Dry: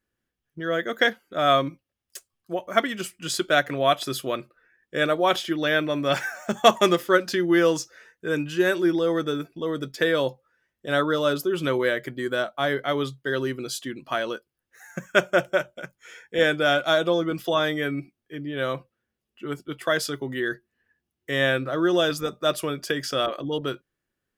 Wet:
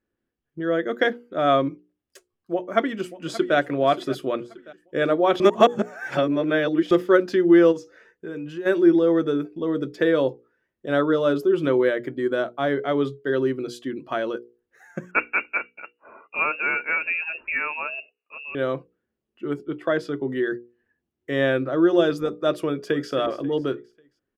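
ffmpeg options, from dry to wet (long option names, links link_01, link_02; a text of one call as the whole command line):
ffmpeg -i in.wav -filter_complex "[0:a]asplit=2[link_01][link_02];[link_02]afade=type=in:start_time=2.53:duration=0.01,afade=type=out:start_time=3.56:duration=0.01,aecho=0:1:580|1160|1740|2320:0.16788|0.0755462|0.0339958|0.0152981[link_03];[link_01][link_03]amix=inputs=2:normalize=0,asplit=3[link_04][link_05][link_06];[link_04]afade=type=out:start_time=7.71:duration=0.02[link_07];[link_05]acompressor=threshold=-35dB:ratio=3:attack=3.2:release=140:knee=1:detection=peak,afade=type=in:start_time=7.71:duration=0.02,afade=type=out:start_time=8.65:duration=0.02[link_08];[link_06]afade=type=in:start_time=8.65:duration=0.02[link_09];[link_07][link_08][link_09]amix=inputs=3:normalize=0,asettb=1/sr,asplit=3[link_10][link_11][link_12];[link_10]atrim=end=15.114[link_13];[link_11]atrim=start=15.11:end=18.55,asetpts=PTS-STARTPTS,afade=type=in:duration=0.004:curve=qsin,afade=type=out:start_time=3.436:duration=0.004:curve=qsin,lowpass=frequency=2500:width_type=q:width=0.5098,lowpass=frequency=2500:width_type=q:width=0.6013,lowpass=frequency=2500:width_type=q:width=0.9,lowpass=frequency=2500:width_type=q:width=2.563,afreqshift=-2900[link_14];[link_12]atrim=start=18.546[link_15];[link_13][link_14]acrossfade=duration=0.004:curve1=hsin:curve2=qsin[link_16];[link_16][link_15]acrossfade=duration=0.004:curve1=qsin:curve2=hsin,asettb=1/sr,asplit=3[link_17][link_18][link_19];[link_17]atrim=end=19.654[link_20];[link_18]atrim=start=19.65:end=20.28,asetpts=PTS-STARTPTS,afade=type=in:duration=0.004:curve=qsin,afade=type=out:start_time=0.626:duration=0.004:curve=qsin,highshelf=frequency=4700:gain=-11[link_21];[link_19]atrim=start=20.276[link_22];[link_20][link_21]acrossfade=duration=0.004:curve1=hsin:curve2=qsin[link_23];[link_23][link_22]acrossfade=duration=0.004:curve1=qsin:curve2=hsin,asplit=2[link_24][link_25];[link_25]afade=type=in:start_time=22.59:duration=0.01,afade=type=out:start_time=23.11:duration=0.01,aecho=0:1:270|540|810|1080:0.223872|0.100742|0.0453341|0.0204003[link_26];[link_24][link_26]amix=inputs=2:normalize=0,asplit=3[link_27][link_28][link_29];[link_27]atrim=end=5.402[link_30];[link_28]atrim=start=5.398:end=6.912,asetpts=PTS-STARTPTS,areverse[link_31];[link_29]atrim=start=6.908[link_32];[link_30][link_31]acrossfade=duration=0.004:curve1=hsin:curve2=hsin[link_33];[link_33][link_32]acrossfade=duration=0.004:curve1=hsin:curve2=hsin,lowpass=frequency=2100:poles=1,equalizer=frequency=340:width_type=o:width=1.4:gain=7.5,bandreject=frequency=60:width_type=h:width=6,bandreject=frequency=120:width_type=h:width=6,bandreject=frequency=180:width_type=h:width=6,bandreject=frequency=240:width_type=h:width=6,bandreject=frequency=300:width_type=h:width=6,bandreject=frequency=360:width_type=h:width=6,bandreject=frequency=420:width_type=h:width=6,bandreject=frequency=480:width_type=h:width=6,volume=-1dB" out.wav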